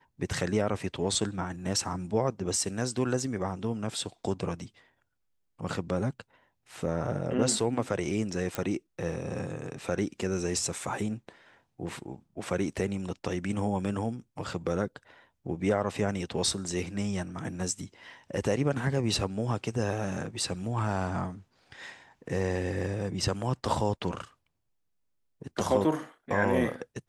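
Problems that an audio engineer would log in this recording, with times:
8.55 pop

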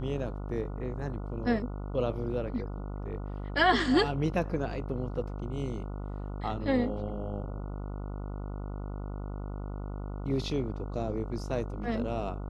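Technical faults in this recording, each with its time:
buzz 50 Hz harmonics 29 -37 dBFS

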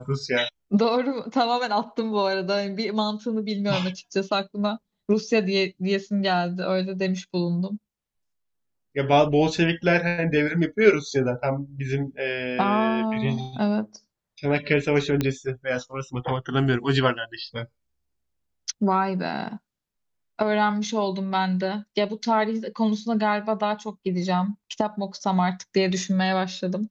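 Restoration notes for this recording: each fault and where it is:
15.21 pop -10 dBFS

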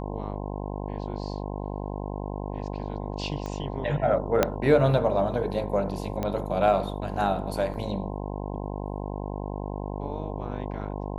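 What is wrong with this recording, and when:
buzz 50 Hz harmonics 21 -33 dBFS
3.46 pop -22 dBFS
4.43 pop -6 dBFS
6.23 pop -16 dBFS
7.74 gap 2.7 ms

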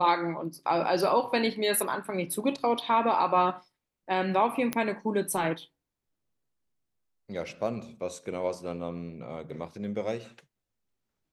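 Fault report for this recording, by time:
4.73 pop -13 dBFS

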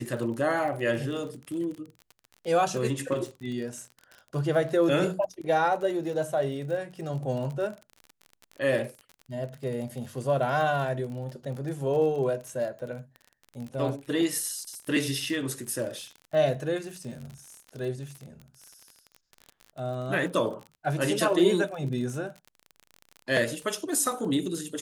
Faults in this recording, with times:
crackle 37/s -35 dBFS

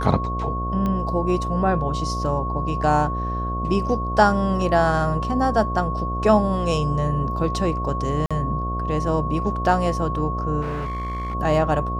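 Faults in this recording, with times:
buzz 60 Hz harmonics 12 -27 dBFS
tone 1100 Hz -27 dBFS
0.86 pop -15 dBFS
8.26–8.31 gap 46 ms
10.61–11.35 clipped -24 dBFS

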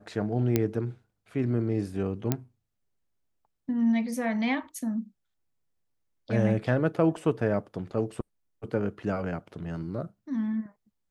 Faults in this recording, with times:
0.56 pop -10 dBFS
2.32 pop -11 dBFS
7.17 gap 4.1 ms

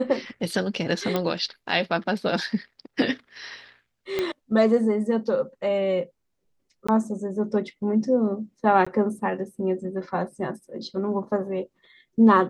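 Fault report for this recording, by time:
1.16 pop -12 dBFS
4.19 pop -12 dBFS
6.87–6.88 gap 15 ms
8.85–8.87 gap 15 ms

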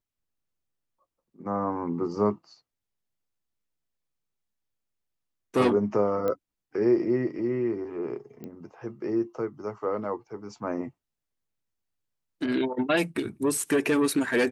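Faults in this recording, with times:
6.28 pop -17 dBFS
8.44 pop -27 dBFS

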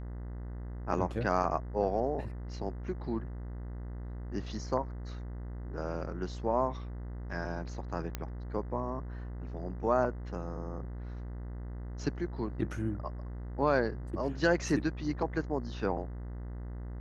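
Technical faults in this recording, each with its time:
buzz 60 Hz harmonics 34 -40 dBFS
8.15 pop -19 dBFS

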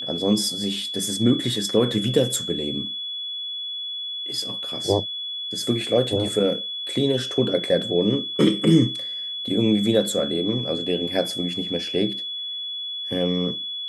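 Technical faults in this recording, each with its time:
tone 3400 Hz -28 dBFS

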